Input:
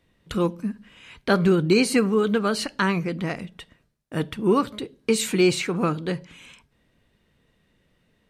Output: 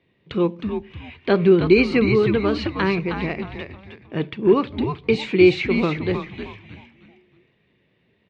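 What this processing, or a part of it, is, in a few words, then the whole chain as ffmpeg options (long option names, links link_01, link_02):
frequency-shifting delay pedal into a guitar cabinet: -filter_complex "[0:a]asplit=5[link_01][link_02][link_03][link_04][link_05];[link_02]adelay=313,afreqshift=-130,volume=-6dB[link_06];[link_03]adelay=626,afreqshift=-260,volume=-15.4dB[link_07];[link_04]adelay=939,afreqshift=-390,volume=-24.7dB[link_08];[link_05]adelay=1252,afreqshift=-520,volume=-34.1dB[link_09];[link_01][link_06][link_07][link_08][link_09]amix=inputs=5:normalize=0,highpass=91,equalizer=frequency=130:width_type=q:width=4:gain=4,equalizer=frequency=380:width_type=q:width=4:gain=7,equalizer=frequency=1400:width_type=q:width=4:gain=-6,equalizer=frequency=2300:width_type=q:width=4:gain=6,lowpass=frequency=4000:width=0.5412,lowpass=frequency=4000:width=1.3066"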